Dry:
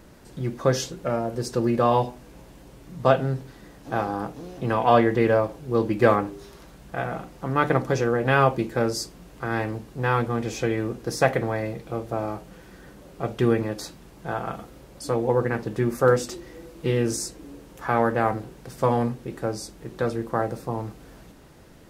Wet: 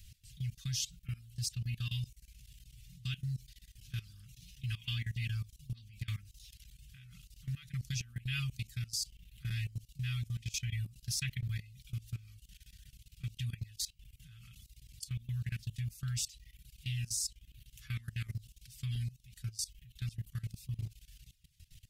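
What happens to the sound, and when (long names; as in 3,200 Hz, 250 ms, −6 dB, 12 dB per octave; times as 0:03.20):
0:05.54–0:06.08: downward compressor 8 to 1, threshold −25 dBFS
whole clip: reverb reduction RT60 0.7 s; elliptic band-stop filter 110–2,800 Hz, stop band 60 dB; output level in coarse steps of 19 dB; level +3 dB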